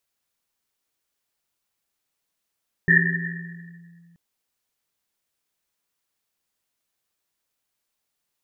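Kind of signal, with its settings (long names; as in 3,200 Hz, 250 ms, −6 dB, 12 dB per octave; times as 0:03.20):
drum after Risset length 1.28 s, pitch 170 Hz, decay 2.44 s, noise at 1,800 Hz, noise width 170 Hz, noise 60%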